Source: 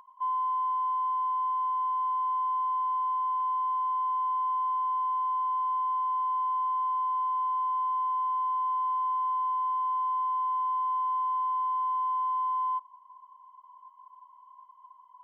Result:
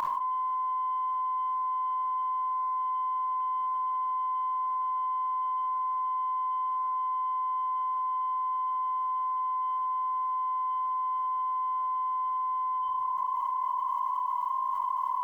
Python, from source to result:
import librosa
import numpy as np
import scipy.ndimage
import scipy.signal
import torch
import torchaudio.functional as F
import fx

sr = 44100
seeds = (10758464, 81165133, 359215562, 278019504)

y = x + 10.0 ** (-23.0 / 20.0) * np.pad(x, (int(905 * sr / 1000.0), 0))[:len(x)]
y = fx.room_shoebox(y, sr, seeds[0], volume_m3=2400.0, walls='furnished', distance_m=2.5)
y = fx.env_flatten(y, sr, amount_pct=100)